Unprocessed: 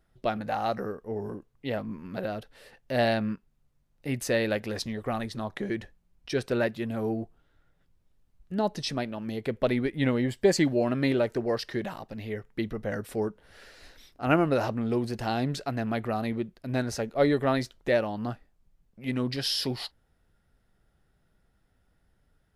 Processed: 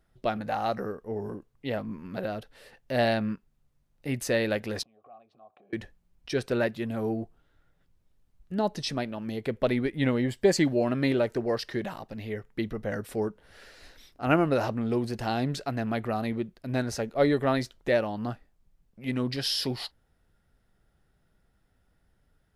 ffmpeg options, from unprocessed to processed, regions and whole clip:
-filter_complex "[0:a]asettb=1/sr,asplit=3[a][b][c];[a]atrim=end=4.834[d];[b]atrim=start=4.83:end=5.73,asetpts=PTS-STARTPTS,afade=t=in:d=0.004:c=qsin,afade=t=out:st=0.896:d=0.004:c=qsin,tiltshelf=f=840:g=5,acompressor=threshold=-37dB:ratio=10:attack=3.2:release=140:knee=1:detection=peak,asplit=3[e][f][g];[e]bandpass=f=730:t=q:w=8,volume=0dB[h];[f]bandpass=f=1.09k:t=q:w=8,volume=-6dB[i];[g]bandpass=f=2.44k:t=q:w=8,volume=-9dB[j];[h][i][j]amix=inputs=3:normalize=0[k];[c]atrim=start=5.726[l];[d][k]acrossfade=d=0.004:c1=hsin:c2=qsin[m];[m][l]acrossfade=d=0.004:c1=qsin:c2=hsin"

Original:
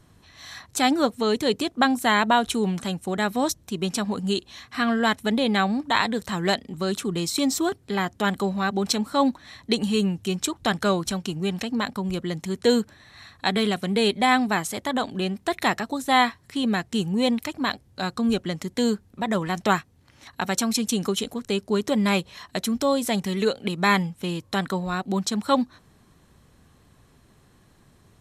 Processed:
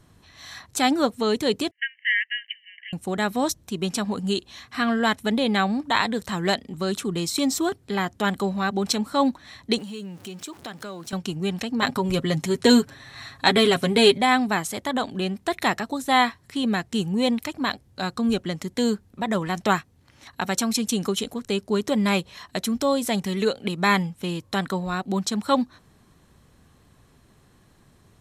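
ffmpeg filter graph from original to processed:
-filter_complex "[0:a]asettb=1/sr,asplit=3[a][b][c];[a]atrim=end=1.714[d];[b]atrim=start=1.71:end=2.93,asetpts=PTS-STARTPTS,afade=t=in:d=0.004:c=qsin,afade=t=out:st=1.216:d=0.004:c=qsin,asuperpass=centerf=2200:order=20:qfactor=1.6,aecho=1:1:1:0.93,atrim=end_sample=53802[e];[c]atrim=start=2.926[f];[d][e]acrossfade=d=0.004:c1=hsin:c2=qsin[g];[g][f]acrossfade=d=0.004:c1=qsin:c2=hsin,asettb=1/sr,asplit=3[h][i][j];[h]atrim=end=9.784[k];[i]atrim=start=9.78:end=11.13,asetpts=PTS-STARTPTS,afade=t=in:d=0.004:c=qsin,afade=t=out:st=1.346:d=0.004:c=qsin,aeval=exprs='val(0)+0.5*0.0126*sgn(val(0))':c=same,highpass=170,acompressor=threshold=-38dB:ratio=2.5:attack=3.2:release=140:knee=1:detection=peak[l];[j]atrim=start=11.126[m];[k][l]acrossfade=d=0.004:c1=hsin:c2=qsin[n];[n][m]acrossfade=d=0.004:c1=qsin:c2=hsin,asettb=1/sr,asplit=3[o][p][q];[o]atrim=end=11.824[r];[p]atrim=start=11.82:end=14.18,asetpts=PTS-STARTPTS,afade=t=in:d=0.004:c=qsin,afade=t=out:st=2.356:d=0.004:c=qsin,aecho=1:1:7.4:0.6,atrim=end_sample=104076,acontrast=27[s];[q]atrim=start=14.176[t];[r][s]acrossfade=d=0.004:c1=hsin:c2=qsin[u];[u][t]acrossfade=d=0.004:c1=qsin:c2=hsin"

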